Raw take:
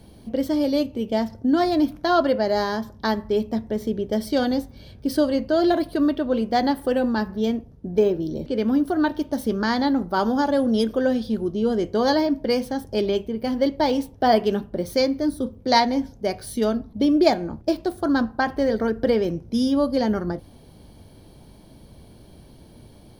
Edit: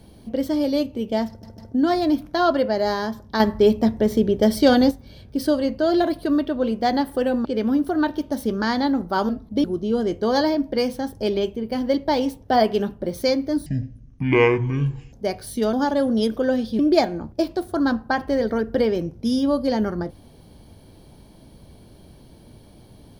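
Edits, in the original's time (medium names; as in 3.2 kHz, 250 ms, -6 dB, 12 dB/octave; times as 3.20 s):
1.28 s: stutter 0.15 s, 3 plays
3.10–4.61 s: gain +6.5 dB
7.15–8.46 s: delete
10.30–11.36 s: swap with 16.73–17.08 s
15.38–16.13 s: speed 51%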